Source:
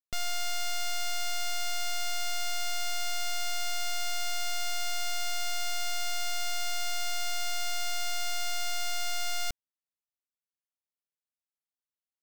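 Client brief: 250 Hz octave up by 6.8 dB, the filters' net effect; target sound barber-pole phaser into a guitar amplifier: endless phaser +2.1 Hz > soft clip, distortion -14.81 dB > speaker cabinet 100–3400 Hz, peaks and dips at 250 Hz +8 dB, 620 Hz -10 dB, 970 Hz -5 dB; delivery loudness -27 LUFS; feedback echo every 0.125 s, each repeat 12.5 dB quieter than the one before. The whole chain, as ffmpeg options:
-filter_complex "[0:a]equalizer=f=250:t=o:g=5,aecho=1:1:125|250|375:0.237|0.0569|0.0137,asplit=2[a][b];[b]afreqshift=2.1[c];[a][c]amix=inputs=2:normalize=1,asoftclip=threshold=-29.5dB,highpass=100,equalizer=f=250:t=q:w=4:g=8,equalizer=f=620:t=q:w=4:g=-10,equalizer=f=970:t=q:w=4:g=-5,lowpass=f=3.4k:w=0.5412,lowpass=f=3.4k:w=1.3066,volume=17.5dB"

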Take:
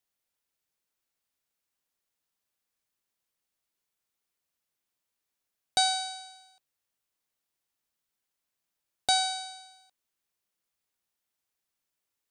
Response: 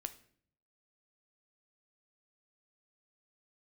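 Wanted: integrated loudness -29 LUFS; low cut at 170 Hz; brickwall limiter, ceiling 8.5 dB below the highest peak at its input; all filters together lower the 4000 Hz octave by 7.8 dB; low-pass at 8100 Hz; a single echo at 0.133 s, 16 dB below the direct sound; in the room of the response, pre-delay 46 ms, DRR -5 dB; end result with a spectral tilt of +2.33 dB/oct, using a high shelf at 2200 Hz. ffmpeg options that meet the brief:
-filter_complex "[0:a]highpass=170,lowpass=8.1k,highshelf=f=2.2k:g=-5,equalizer=f=4k:t=o:g=-4,alimiter=level_in=1.5dB:limit=-24dB:level=0:latency=1,volume=-1.5dB,aecho=1:1:133:0.158,asplit=2[a][b];[1:a]atrim=start_sample=2205,adelay=46[c];[b][c]afir=irnorm=-1:irlink=0,volume=7.5dB[d];[a][d]amix=inputs=2:normalize=0,volume=4.5dB"

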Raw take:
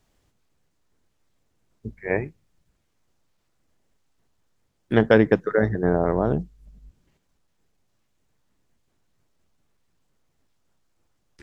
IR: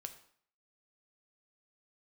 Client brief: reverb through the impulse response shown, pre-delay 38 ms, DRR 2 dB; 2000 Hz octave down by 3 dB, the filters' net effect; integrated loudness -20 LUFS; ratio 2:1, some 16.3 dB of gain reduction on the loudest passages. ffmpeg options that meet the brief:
-filter_complex "[0:a]equalizer=f=2k:t=o:g=-4,acompressor=threshold=-42dB:ratio=2,asplit=2[a][b];[1:a]atrim=start_sample=2205,adelay=38[c];[b][c]afir=irnorm=-1:irlink=0,volume=2dB[d];[a][d]amix=inputs=2:normalize=0,volume=16dB"

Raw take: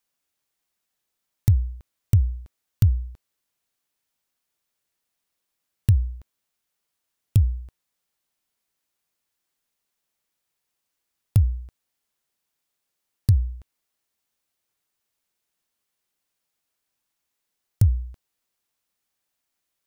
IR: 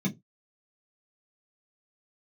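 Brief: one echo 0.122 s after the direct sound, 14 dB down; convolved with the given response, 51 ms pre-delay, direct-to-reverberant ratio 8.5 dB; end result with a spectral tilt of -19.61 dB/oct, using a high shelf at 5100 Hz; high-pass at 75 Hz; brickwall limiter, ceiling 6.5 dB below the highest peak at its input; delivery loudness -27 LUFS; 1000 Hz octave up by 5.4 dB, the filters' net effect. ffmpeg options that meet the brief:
-filter_complex "[0:a]highpass=75,equalizer=f=1k:t=o:g=7,highshelf=f=5.1k:g=5.5,alimiter=limit=-15dB:level=0:latency=1,aecho=1:1:122:0.2,asplit=2[a][b];[1:a]atrim=start_sample=2205,adelay=51[c];[b][c]afir=irnorm=-1:irlink=0,volume=-13dB[d];[a][d]amix=inputs=2:normalize=0"

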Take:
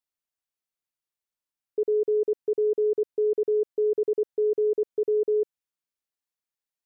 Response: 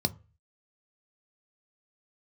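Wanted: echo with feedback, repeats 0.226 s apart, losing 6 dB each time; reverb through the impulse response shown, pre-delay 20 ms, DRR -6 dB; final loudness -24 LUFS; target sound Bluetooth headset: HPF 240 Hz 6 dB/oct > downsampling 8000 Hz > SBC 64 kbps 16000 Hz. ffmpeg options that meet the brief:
-filter_complex "[0:a]aecho=1:1:226|452|678|904|1130|1356:0.501|0.251|0.125|0.0626|0.0313|0.0157,asplit=2[a][b];[1:a]atrim=start_sample=2205,adelay=20[c];[b][c]afir=irnorm=-1:irlink=0,volume=0dB[d];[a][d]amix=inputs=2:normalize=0,highpass=f=240:p=1,aresample=8000,aresample=44100,volume=-10.5dB" -ar 16000 -c:a sbc -b:a 64k

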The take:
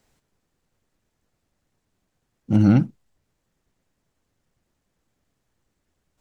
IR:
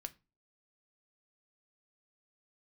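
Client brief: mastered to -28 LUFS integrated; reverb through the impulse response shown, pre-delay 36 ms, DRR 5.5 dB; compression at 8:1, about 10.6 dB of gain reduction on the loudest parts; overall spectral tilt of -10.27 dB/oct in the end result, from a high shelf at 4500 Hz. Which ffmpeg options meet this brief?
-filter_complex "[0:a]highshelf=f=4.5k:g=3.5,acompressor=threshold=-22dB:ratio=8,asplit=2[a][b];[1:a]atrim=start_sample=2205,adelay=36[c];[b][c]afir=irnorm=-1:irlink=0,volume=-1.5dB[d];[a][d]amix=inputs=2:normalize=0"

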